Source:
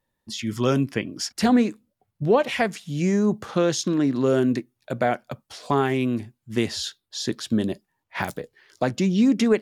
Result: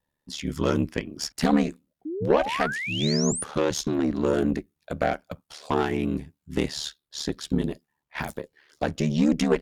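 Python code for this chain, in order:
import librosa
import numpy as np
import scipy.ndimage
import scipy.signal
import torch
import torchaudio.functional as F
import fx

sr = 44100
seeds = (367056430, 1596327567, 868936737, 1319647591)

y = fx.cheby_harmonics(x, sr, harmonics=(4,), levels_db=(-18,), full_scale_db=-9.0)
y = y * np.sin(2.0 * np.pi * 37.0 * np.arange(len(y)) / sr)
y = fx.spec_paint(y, sr, seeds[0], shape='rise', start_s=2.05, length_s=1.39, low_hz=290.0, high_hz=10000.0, level_db=-31.0)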